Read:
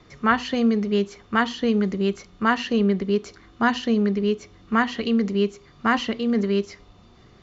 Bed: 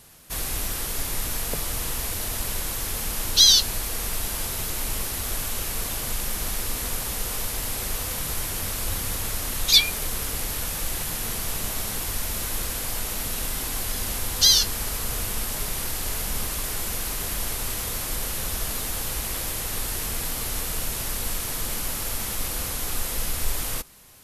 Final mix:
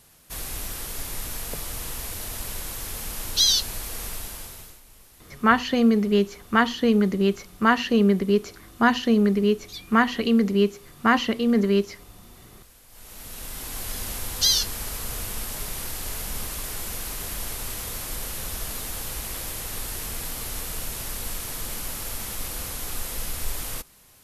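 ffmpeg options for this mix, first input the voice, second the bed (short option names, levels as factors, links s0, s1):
-filter_complex "[0:a]adelay=5200,volume=1.19[s0];[1:a]volume=5.96,afade=t=out:st=4.05:d=0.76:silence=0.112202,afade=t=in:st=12.89:d=1.03:silence=0.1[s1];[s0][s1]amix=inputs=2:normalize=0"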